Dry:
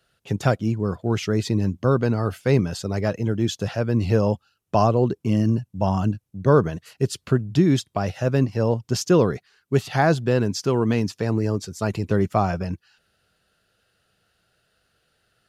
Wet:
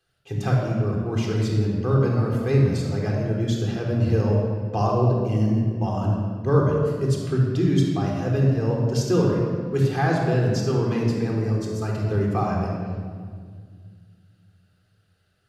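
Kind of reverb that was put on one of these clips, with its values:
rectangular room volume 3,200 cubic metres, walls mixed, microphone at 3.8 metres
level −8.5 dB

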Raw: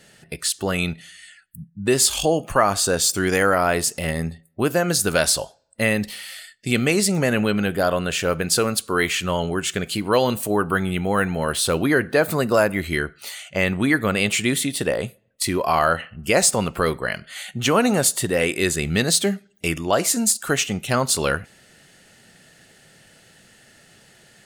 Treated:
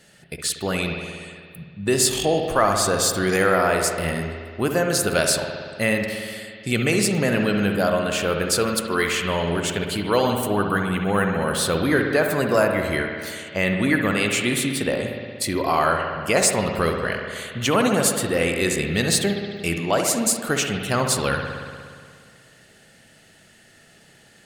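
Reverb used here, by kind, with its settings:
spring reverb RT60 2 s, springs 59 ms, chirp 20 ms, DRR 3 dB
level −2 dB

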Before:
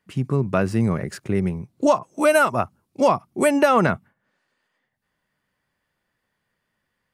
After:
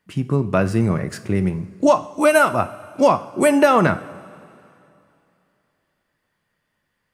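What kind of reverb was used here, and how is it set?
coupled-rooms reverb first 0.51 s, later 2.8 s, from −15 dB, DRR 10 dB
level +2 dB

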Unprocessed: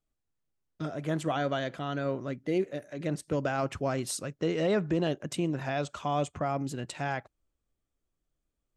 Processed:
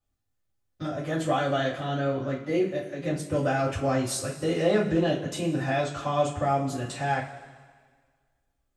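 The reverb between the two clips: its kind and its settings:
coupled-rooms reverb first 0.26 s, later 1.7 s, from −17 dB, DRR −9 dB
level −5 dB

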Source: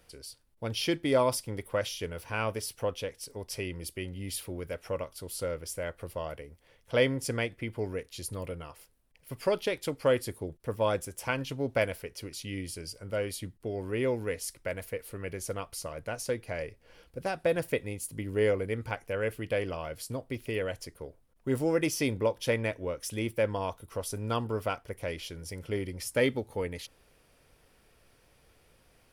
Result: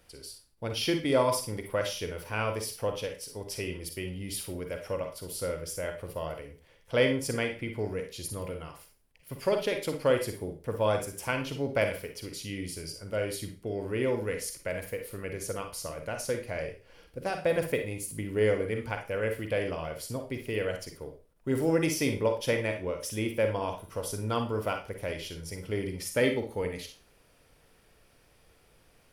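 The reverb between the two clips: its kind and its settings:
four-comb reverb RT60 0.33 s, DRR 5 dB

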